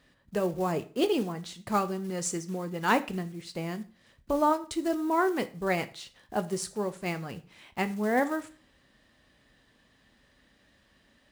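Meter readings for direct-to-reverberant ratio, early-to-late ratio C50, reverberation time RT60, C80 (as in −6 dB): 10.5 dB, 17.0 dB, 0.40 s, 21.5 dB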